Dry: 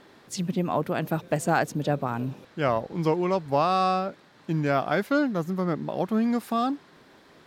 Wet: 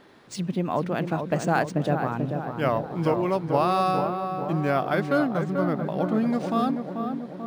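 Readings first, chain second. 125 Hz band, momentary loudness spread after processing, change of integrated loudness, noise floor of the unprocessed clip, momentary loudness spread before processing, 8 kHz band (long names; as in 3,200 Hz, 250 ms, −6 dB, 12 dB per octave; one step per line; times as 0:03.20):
+2.0 dB, 6 LU, +1.0 dB, −55 dBFS, 8 LU, can't be measured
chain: on a send: feedback echo with a low-pass in the loop 438 ms, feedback 63%, low-pass 1,400 Hz, level −5.5 dB
on the sum: linearly interpolated sample-rate reduction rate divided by 3×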